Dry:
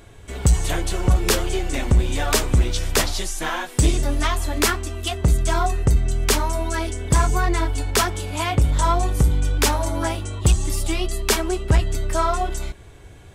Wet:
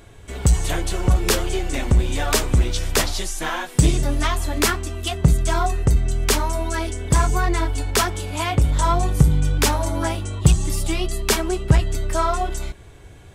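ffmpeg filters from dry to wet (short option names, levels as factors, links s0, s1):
-af "asetnsamples=n=441:p=0,asendcmd='3.75 equalizer g 8;5.34 equalizer g 1;8.92 equalizer g 9;11.73 equalizer g 1',equalizer=f=150:t=o:w=0.6:g=0.5"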